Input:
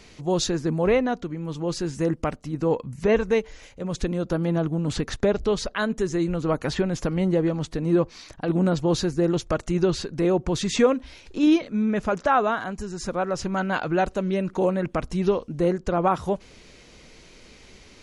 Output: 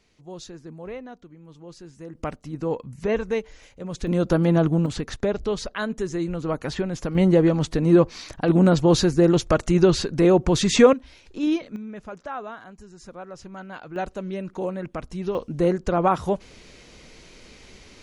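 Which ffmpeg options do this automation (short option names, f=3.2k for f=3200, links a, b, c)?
-af "asetnsamples=n=441:p=0,asendcmd='2.15 volume volume -3.5dB;4.07 volume volume 5dB;4.86 volume volume -2.5dB;7.15 volume volume 5dB;10.93 volume volume -4.5dB;11.76 volume volume -13dB;13.96 volume volume -6dB;15.35 volume volume 1.5dB',volume=-15.5dB"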